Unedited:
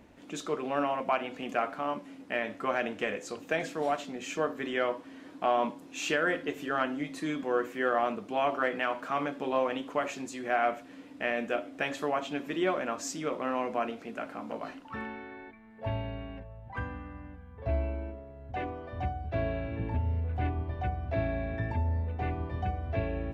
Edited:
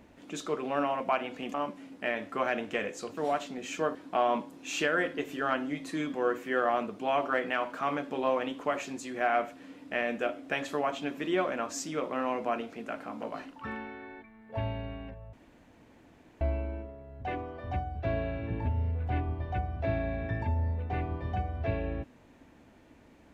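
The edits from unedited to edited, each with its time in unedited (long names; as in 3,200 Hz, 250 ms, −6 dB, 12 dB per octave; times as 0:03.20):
0:01.54–0:01.82: remove
0:03.45–0:03.75: remove
0:04.53–0:05.24: remove
0:16.62–0:17.70: fill with room tone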